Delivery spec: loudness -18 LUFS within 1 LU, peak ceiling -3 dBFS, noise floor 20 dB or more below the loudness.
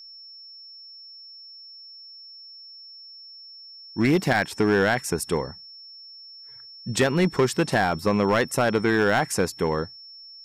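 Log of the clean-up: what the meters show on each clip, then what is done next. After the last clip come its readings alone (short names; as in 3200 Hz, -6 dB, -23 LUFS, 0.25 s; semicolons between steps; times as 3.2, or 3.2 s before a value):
clipped 1.0%; flat tops at -14.0 dBFS; steady tone 5400 Hz; tone level -42 dBFS; loudness -23.0 LUFS; peak -14.0 dBFS; loudness target -18.0 LUFS
-> clip repair -14 dBFS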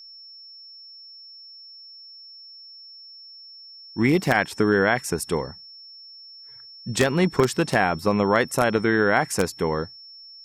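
clipped 0.0%; steady tone 5400 Hz; tone level -42 dBFS
-> notch 5400 Hz, Q 30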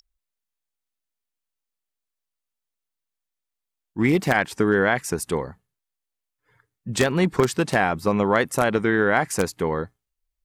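steady tone none; loudness -22.0 LUFS; peak -5.0 dBFS; loudness target -18.0 LUFS
-> gain +4 dB; limiter -3 dBFS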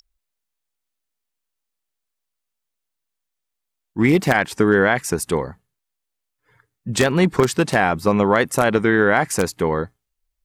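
loudness -18.5 LUFS; peak -3.0 dBFS; noise floor -80 dBFS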